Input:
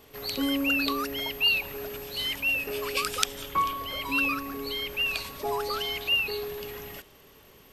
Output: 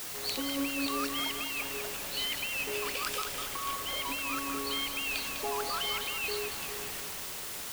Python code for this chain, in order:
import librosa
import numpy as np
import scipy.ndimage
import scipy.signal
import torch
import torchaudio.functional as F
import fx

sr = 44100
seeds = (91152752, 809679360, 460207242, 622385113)

y = scipy.signal.sosfilt(scipy.signal.butter(2, 9900.0, 'lowpass', fs=sr, output='sos'), x)
y = fx.low_shelf(y, sr, hz=270.0, db=-8.0)
y = fx.over_compress(y, sr, threshold_db=-31.0, ratio=-1.0)
y = fx.quant_dither(y, sr, seeds[0], bits=6, dither='triangular')
y = fx.echo_filtered(y, sr, ms=201, feedback_pct=62, hz=3600.0, wet_db=-5.5)
y = F.gain(torch.from_numpy(y), -4.0).numpy()